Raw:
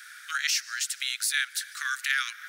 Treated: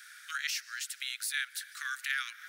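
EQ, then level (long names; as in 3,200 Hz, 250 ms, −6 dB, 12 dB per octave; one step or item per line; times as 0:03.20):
high-pass filter 1,200 Hz 6 dB per octave
dynamic equaliser 6,300 Hz, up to −6 dB, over −42 dBFS, Q 0.8
−4.0 dB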